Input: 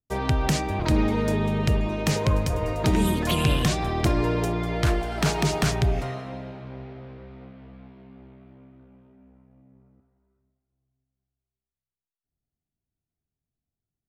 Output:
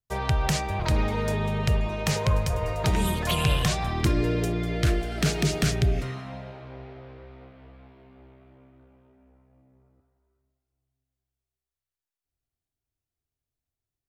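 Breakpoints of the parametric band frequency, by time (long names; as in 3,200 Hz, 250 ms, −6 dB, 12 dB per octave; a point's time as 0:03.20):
parametric band −14 dB 0.68 octaves
0:03.76 280 Hz
0:04.17 930 Hz
0:05.97 930 Hz
0:06.61 190 Hz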